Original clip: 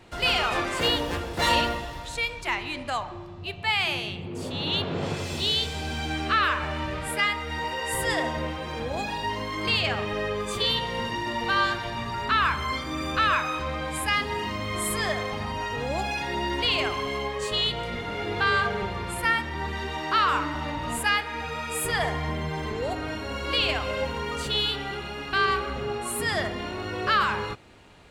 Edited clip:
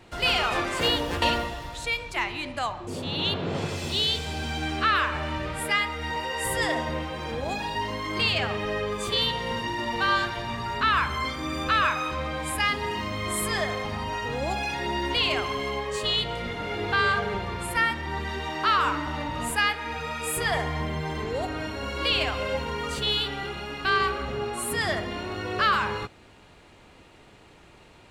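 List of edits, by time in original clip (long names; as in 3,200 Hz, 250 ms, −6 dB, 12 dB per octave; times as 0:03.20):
0:01.22–0:01.53: remove
0:03.18–0:04.35: remove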